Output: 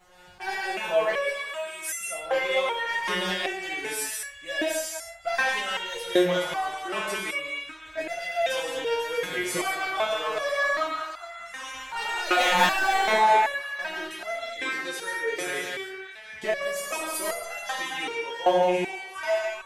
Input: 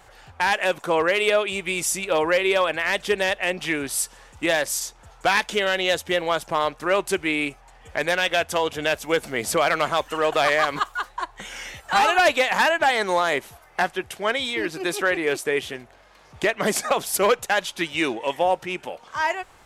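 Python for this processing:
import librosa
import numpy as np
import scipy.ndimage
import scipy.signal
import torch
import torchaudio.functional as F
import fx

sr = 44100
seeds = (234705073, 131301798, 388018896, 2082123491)

p1 = fx.pre_emphasis(x, sr, coefficient=0.8, at=(1.29, 2.01))
p2 = fx.leveller(p1, sr, passes=2, at=(12.39, 12.99))
p3 = p2 + fx.echo_stepped(p2, sr, ms=400, hz=1100.0, octaves=0.7, feedback_pct=70, wet_db=-6, dry=0)
p4 = fx.rev_gated(p3, sr, seeds[0], gate_ms=250, shape='flat', drr_db=-2.0)
p5 = fx.resonator_held(p4, sr, hz=2.6, low_hz=180.0, high_hz=680.0)
y = F.gain(torch.from_numpy(p5), 5.5).numpy()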